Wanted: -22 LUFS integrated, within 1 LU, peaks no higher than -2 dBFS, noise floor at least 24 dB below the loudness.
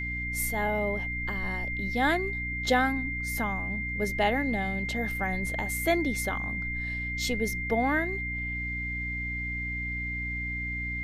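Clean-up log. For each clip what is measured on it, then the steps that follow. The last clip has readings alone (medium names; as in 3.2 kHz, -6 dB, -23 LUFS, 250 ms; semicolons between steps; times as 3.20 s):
hum 60 Hz; highest harmonic 300 Hz; hum level -34 dBFS; steady tone 2.1 kHz; tone level -32 dBFS; loudness -29.0 LUFS; peak level -11.0 dBFS; loudness target -22.0 LUFS
-> de-hum 60 Hz, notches 5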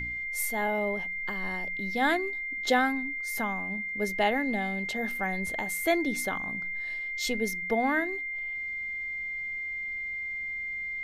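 hum not found; steady tone 2.1 kHz; tone level -32 dBFS
-> band-stop 2.1 kHz, Q 30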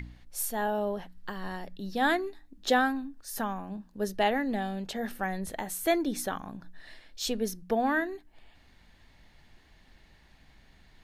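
steady tone not found; loudness -31.5 LUFS; peak level -12.5 dBFS; loudness target -22.0 LUFS
-> trim +9.5 dB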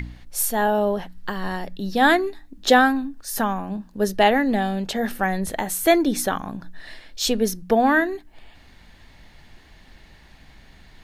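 loudness -22.0 LUFS; peak level -3.0 dBFS; noise floor -51 dBFS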